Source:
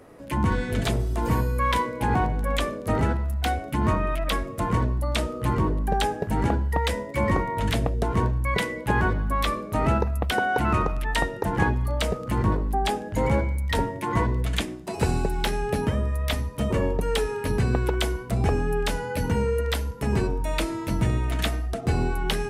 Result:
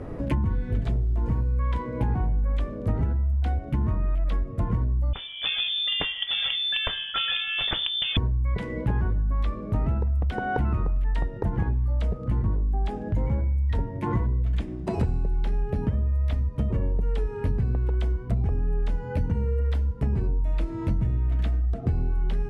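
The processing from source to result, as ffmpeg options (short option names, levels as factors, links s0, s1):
-filter_complex "[0:a]asettb=1/sr,asplit=3[s0][s1][s2];[s0]atrim=end=5.134[s3];[s1]atrim=start=5.13:end=8.17,asetpts=PTS-STARTPTS,afade=t=in:d=0.004:c=qsin,afade=t=out:st=3.036:d=0.004:c=qsin,lowpass=f=3100:t=q:w=0.5098,lowpass=f=3100:t=q:w=0.6013,lowpass=f=3100:t=q:w=0.9,lowpass=f=3100:t=q:w=2.563,afreqshift=-3600[s4];[s2]atrim=start=8.166[s5];[s3][s4]acrossfade=d=0.004:c1=hsin:c2=qsin[s6];[s6][s5]acrossfade=d=0.004:c1=qsin:c2=hsin,aemphasis=mode=reproduction:type=riaa,acompressor=threshold=0.0282:ratio=6,volume=2.24"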